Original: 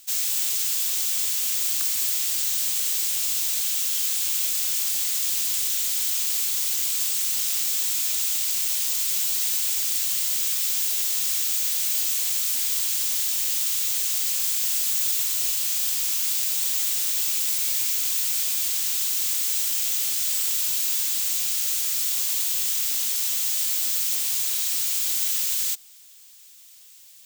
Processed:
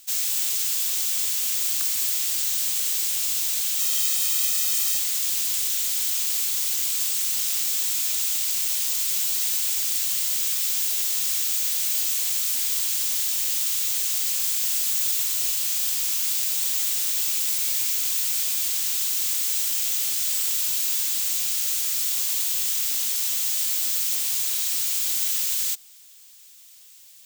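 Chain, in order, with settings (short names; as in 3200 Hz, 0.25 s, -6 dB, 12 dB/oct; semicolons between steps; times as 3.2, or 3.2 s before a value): 3.79–4.99 comb 1.6 ms, depth 74%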